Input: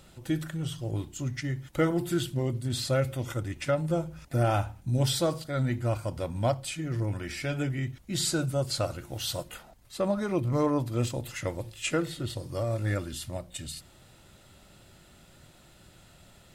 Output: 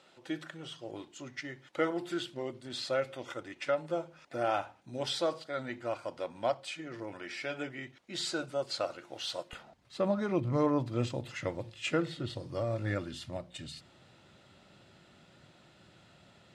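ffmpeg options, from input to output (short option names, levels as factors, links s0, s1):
-af "asetnsamples=n=441:p=0,asendcmd='9.53 highpass f 120',highpass=390,lowpass=4700,volume=0.794"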